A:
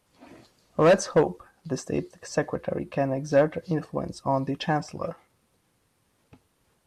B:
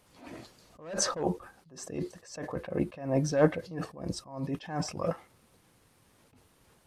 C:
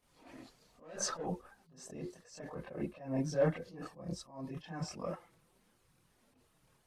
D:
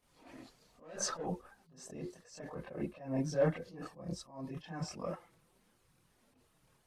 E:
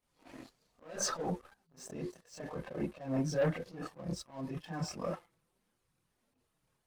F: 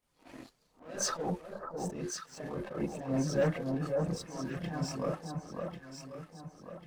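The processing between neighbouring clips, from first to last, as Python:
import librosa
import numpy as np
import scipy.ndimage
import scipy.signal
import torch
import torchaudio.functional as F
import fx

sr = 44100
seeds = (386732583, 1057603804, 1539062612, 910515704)

y1 = fx.attack_slew(x, sr, db_per_s=110.0)
y1 = F.gain(torch.from_numpy(y1), 5.0).numpy()
y2 = fx.chorus_voices(y1, sr, voices=6, hz=0.39, base_ms=27, depth_ms=4.3, mix_pct=65)
y2 = F.gain(torch.from_numpy(y2), -5.0).numpy()
y3 = y2
y4 = fx.leveller(y3, sr, passes=2)
y4 = F.gain(torch.from_numpy(y4), -4.5).numpy()
y5 = fx.echo_alternate(y4, sr, ms=547, hz=1300.0, feedback_pct=63, wet_db=-3.0)
y5 = F.gain(torch.from_numpy(y5), 1.5).numpy()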